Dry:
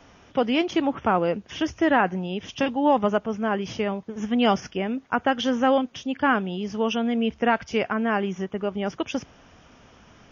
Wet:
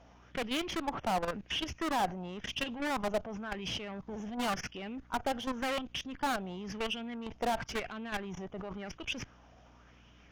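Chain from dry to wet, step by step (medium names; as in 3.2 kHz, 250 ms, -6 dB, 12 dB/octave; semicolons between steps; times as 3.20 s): hum 60 Hz, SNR 25 dB; Chebyshev shaper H 4 -21 dB, 6 -14 dB, 7 -33 dB, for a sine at -6.5 dBFS; level held to a coarse grid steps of 21 dB; valve stage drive 37 dB, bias 0.35; sweeping bell 0.94 Hz 650–3000 Hz +9 dB; trim +4.5 dB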